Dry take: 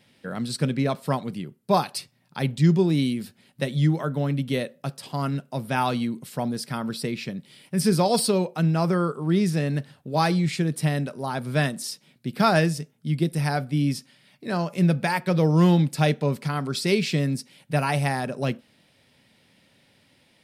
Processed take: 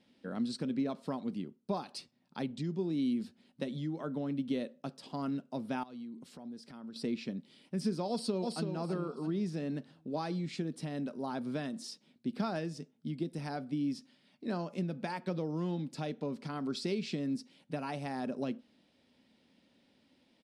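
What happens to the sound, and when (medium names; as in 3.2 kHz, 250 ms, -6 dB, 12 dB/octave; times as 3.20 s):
5.83–6.96 s: compression 10:1, threshold -38 dBFS
8.09–8.74 s: echo throw 330 ms, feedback 30%, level -4.5 dB
whole clip: low-pass 6 kHz 12 dB/octave; compression, threshold -24 dBFS; graphic EQ 125/250/2000 Hz -10/+9/-5 dB; trim -8.5 dB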